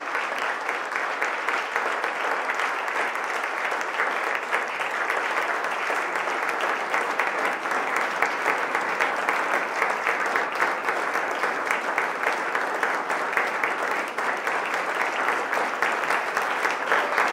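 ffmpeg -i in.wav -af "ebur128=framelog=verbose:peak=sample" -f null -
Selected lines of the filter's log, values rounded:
Integrated loudness:
  I:         -24.6 LUFS
  Threshold: -34.6 LUFS
Loudness range:
  LRA:         1.6 LU
  Threshold: -44.6 LUFS
  LRA low:   -25.4 LUFS
  LRA high:  -23.8 LUFS
Sample peak:
  Peak:       -6.0 dBFS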